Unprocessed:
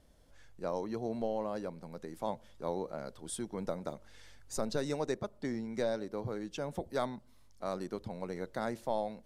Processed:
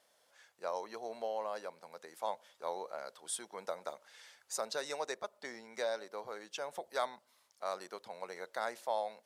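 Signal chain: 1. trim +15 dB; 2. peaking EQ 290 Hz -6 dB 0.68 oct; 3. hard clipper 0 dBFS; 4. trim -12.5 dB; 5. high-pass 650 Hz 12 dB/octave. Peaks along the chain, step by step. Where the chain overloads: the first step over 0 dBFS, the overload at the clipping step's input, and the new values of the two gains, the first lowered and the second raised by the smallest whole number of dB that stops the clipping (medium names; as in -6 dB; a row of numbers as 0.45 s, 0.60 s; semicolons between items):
-3.5 dBFS, -4.0 dBFS, -4.0 dBFS, -16.5 dBFS, -22.0 dBFS; nothing clips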